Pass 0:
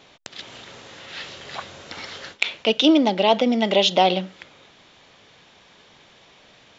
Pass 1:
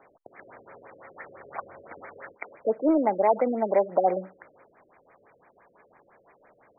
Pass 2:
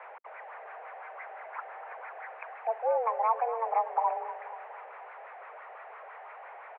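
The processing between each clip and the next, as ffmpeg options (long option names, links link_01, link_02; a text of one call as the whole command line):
ffmpeg -i in.wav -filter_complex "[0:a]acrossover=split=370 2200:gain=0.251 1 0.251[link_01][link_02][link_03];[link_01][link_02][link_03]amix=inputs=3:normalize=0,acontrast=51,afftfilt=real='re*lt(b*sr/1024,570*pow(2500/570,0.5+0.5*sin(2*PI*5.9*pts/sr)))':imag='im*lt(b*sr/1024,570*pow(2500/570,0.5+0.5*sin(2*PI*5.9*pts/sr)))':win_size=1024:overlap=0.75,volume=-6.5dB" out.wav
ffmpeg -i in.wav -af "aeval=exprs='val(0)+0.5*0.0188*sgn(val(0))':channel_layout=same,aecho=1:1:242|484|726|968|1210|1452:0.237|0.128|0.0691|0.0373|0.0202|0.0109,highpass=frequency=210:width_type=q:width=0.5412,highpass=frequency=210:width_type=q:width=1.307,lowpass=frequency=2100:width_type=q:width=0.5176,lowpass=frequency=2100:width_type=q:width=0.7071,lowpass=frequency=2100:width_type=q:width=1.932,afreqshift=230,volume=-6.5dB" out.wav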